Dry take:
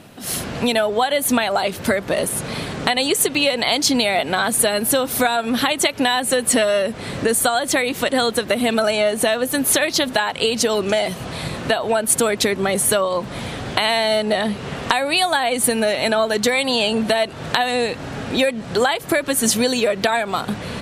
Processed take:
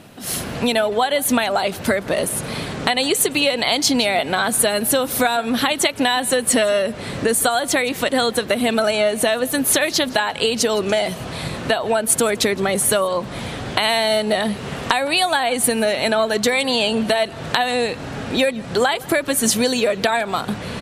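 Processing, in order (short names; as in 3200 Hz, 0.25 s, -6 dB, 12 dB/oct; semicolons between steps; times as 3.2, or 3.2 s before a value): 13.83–14.88 high shelf 11000 Hz +9.5 dB; echo 0.164 s -22.5 dB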